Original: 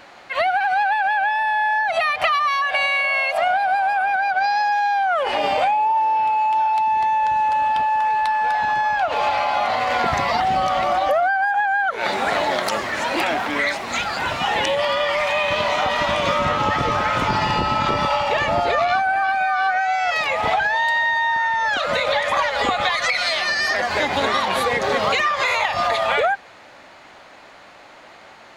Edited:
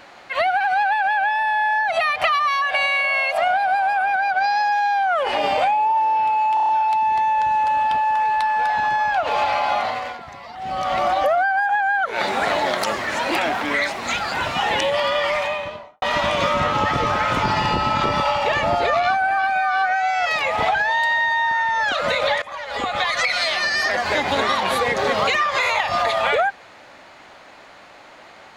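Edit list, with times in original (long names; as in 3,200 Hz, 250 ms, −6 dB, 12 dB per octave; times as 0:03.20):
0:06.54: stutter 0.03 s, 6 plays
0:09.59–0:10.85: duck −17.5 dB, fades 0.45 s
0:15.11–0:15.87: fade out and dull
0:22.27–0:22.99: fade in, from −22 dB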